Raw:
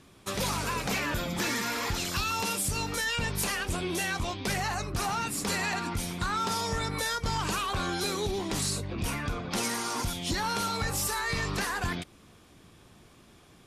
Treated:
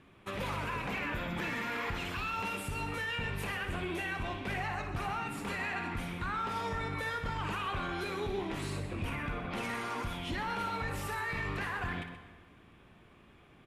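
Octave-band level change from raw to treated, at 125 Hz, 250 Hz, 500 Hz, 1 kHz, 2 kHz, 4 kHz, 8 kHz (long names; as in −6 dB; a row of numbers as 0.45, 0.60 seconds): −4.5, −5.0, −4.5, −4.5, −3.5, −10.5, −19.0 decibels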